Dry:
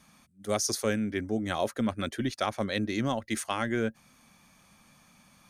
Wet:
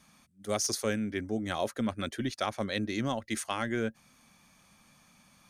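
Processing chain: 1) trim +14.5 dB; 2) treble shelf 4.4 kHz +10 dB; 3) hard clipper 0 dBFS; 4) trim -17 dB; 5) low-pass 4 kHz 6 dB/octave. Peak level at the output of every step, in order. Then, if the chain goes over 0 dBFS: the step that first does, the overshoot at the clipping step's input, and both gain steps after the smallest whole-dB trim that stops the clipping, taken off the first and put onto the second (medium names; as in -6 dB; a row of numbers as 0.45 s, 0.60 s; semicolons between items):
+0.5 dBFS, +4.0 dBFS, 0.0 dBFS, -17.0 dBFS, -17.0 dBFS; step 1, 4.0 dB; step 1 +10.5 dB, step 4 -13 dB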